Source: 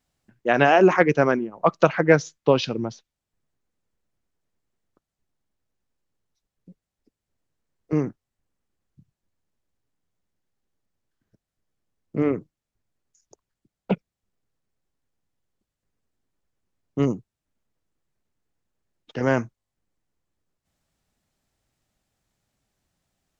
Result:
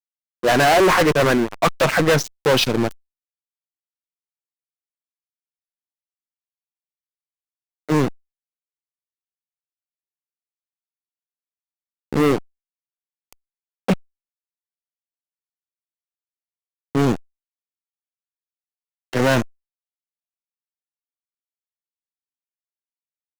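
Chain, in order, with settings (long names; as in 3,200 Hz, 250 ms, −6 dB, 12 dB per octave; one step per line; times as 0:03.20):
low-shelf EQ 320 Hz −4.5 dB
fuzz pedal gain 25 dB, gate −34 dBFS
tempo change 1×
power curve on the samples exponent 0.5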